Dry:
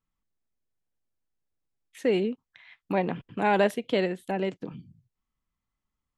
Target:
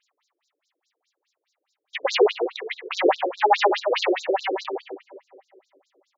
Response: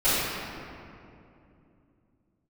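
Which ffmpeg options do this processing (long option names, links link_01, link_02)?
-filter_complex "[0:a]highshelf=frequency=5300:gain=6.5,asplit=2[link_01][link_02];[1:a]atrim=start_sample=2205[link_03];[link_02][link_03]afir=irnorm=-1:irlink=0,volume=-38.5dB[link_04];[link_01][link_04]amix=inputs=2:normalize=0,aeval=exprs='(tanh(17.8*val(0)+0.65)-tanh(0.65))/17.8':channel_layout=same,acontrast=90,equalizer=frequency=1500:width_type=o:width=0.21:gain=-6,asettb=1/sr,asplit=3[link_05][link_06][link_07];[link_05]atrim=end=3.644[link_08];[link_06]atrim=start=3.64:end=4.47,asetpts=PTS-STARTPTS,afade=type=in:duration=0.004:curve=qsin,afade=type=out:start_time=0.826:duration=0.004:curve=qsin,acompressor=threshold=-25dB:ratio=6[link_09];[link_07]atrim=start=4.466[link_10];[link_08][link_09]acrossfade=duration=0.004:curve1=hsin:curve2=qsin[link_11];[link_11][link_10]acrossfade=duration=0.004:curve1=qsin:curve2=hsin,asplit=2[link_12][link_13];[link_13]adelay=131,lowpass=frequency=3000:poles=1,volume=-6dB,asplit=2[link_14][link_15];[link_15]adelay=131,lowpass=frequency=3000:poles=1,volume=0.33,asplit=2[link_16][link_17];[link_17]adelay=131,lowpass=frequency=3000:poles=1,volume=0.33,asplit=2[link_18][link_19];[link_19]adelay=131,lowpass=frequency=3000:poles=1,volume=0.33[link_20];[link_12][link_14][link_16][link_18][link_20]amix=inputs=5:normalize=0,asplit=2[link_21][link_22];[link_22]highpass=frequency=720:poles=1,volume=25dB,asoftclip=type=tanh:threshold=-6.5dB[link_23];[link_21][link_23]amix=inputs=2:normalize=0,lowpass=frequency=7000:poles=1,volume=-6dB,afftfilt=real='re*between(b*sr/1024,370*pow(5400/370,0.5+0.5*sin(2*PI*4.8*pts/sr))/1.41,370*pow(5400/370,0.5+0.5*sin(2*PI*4.8*pts/sr))*1.41)':imag='im*between(b*sr/1024,370*pow(5400/370,0.5+0.5*sin(2*PI*4.8*pts/sr))/1.41,370*pow(5400/370,0.5+0.5*sin(2*PI*4.8*pts/sr))*1.41)':win_size=1024:overlap=0.75,volume=3dB"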